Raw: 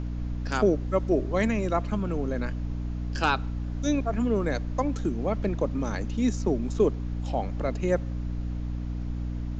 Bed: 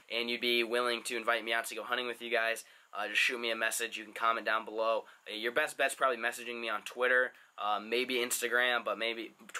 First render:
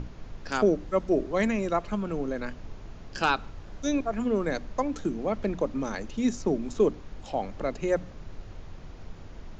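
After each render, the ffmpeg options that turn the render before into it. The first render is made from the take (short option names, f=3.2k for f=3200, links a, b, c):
-af "bandreject=f=60:t=h:w=6,bandreject=f=120:t=h:w=6,bandreject=f=180:t=h:w=6,bandreject=f=240:t=h:w=6,bandreject=f=300:t=h:w=6"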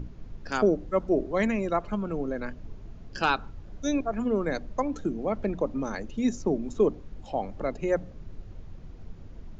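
-af "afftdn=nr=9:nf=-44"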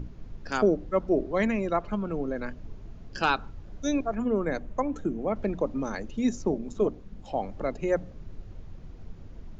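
-filter_complex "[0:a]asettb=1/sr,asplit=3[a][b][c];[a]atrim=end=0.664[d];[b]atrim=start=0.66:end=2.36,asetpts=PTS-STARTPTS,afade=t=in:d=0.004:c=qsin,afade=t=out:st=1.696:d=0.004:c=qsin,lowpass=6.6k[e];[c]atrim=start=2.356[f];[d][e]acrossfade=d=0.004:c1=hsin:c2=qsin[g];[g][f]acrossfade=d=0.004:c1=qsin:c2=hsin,asettb=1/sr,asplit=3[h][i][j];[h]atrim=end=4.154[k];[i]atrim=start=4.15:end=5.36,asetpts=PTS-STARTPTS,afade=t=in:d=0.004:c=qsin,afade=t=out:st=1.206:d=0.004:c=qsin,equalizer=f=4.7k:w=1.5:g=-8.5[l];[j]atrim=start=5.356[m];[k][l]acrossfade=d=0.004:c1=hsin:c2=qsin[n];[n][m]acrossfade=d=0.004:c1=qsin:c2=hsin,asettb=1/sr,asplit=3[o][p][q];[o]atrim=end=6.514[r];[p]atrim=start=6.51:end=7.25,asetpts=PTS-STARTPTS,afade=t=in:d=0.004:c=qsin,afade=t=out:st=0.736:d=0.004:c=qsin,tremolo=f=200:d=0.571[s];[q]atrim=start=7.246[t];[r][s]acrossfade=d=0.004:c1=hsin:c2=qsin[u];[u][t]acrossfade=d=0.004:c1=qsin:c2=hsin"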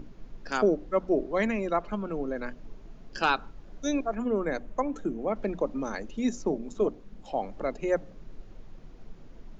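-af "equalizer=f=76:w=0.95:g=-14,bandreject=f=60:t=h:w=6,bandreject=f=120:t=h:w=6,bandreject=f=180:t=h:w=6"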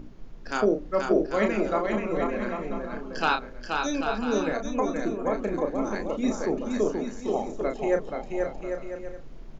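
-filter_complex "[0:a]asplit=2[a][b];[b]adelay=33,volume=-6dB[c];[a][c]amix=inputs=2:normalize=0,aecho=1:1:480|792|994.8|1127|1212:0.631|0.398|0.251|0.158|0.1"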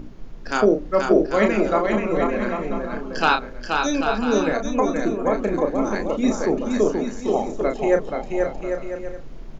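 -af "volume=6dB"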